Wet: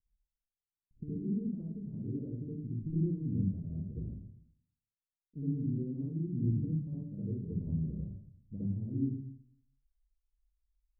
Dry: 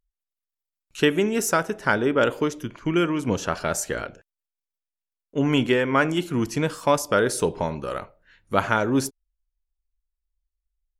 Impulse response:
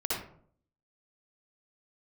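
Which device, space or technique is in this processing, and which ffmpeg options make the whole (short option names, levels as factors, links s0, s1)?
club heard from the street: -filter_complex "[0:a]alimiter=limit=0.158:level=0:latency=1:release=422,lowpass=f=210:w=0.5412,lowpass=f=210:w=1.3066[s0];[1:a]atrim=start_sample=2205[s1];[s0][s1]afir=irnorm=-1:irlink=0,volume=0.531"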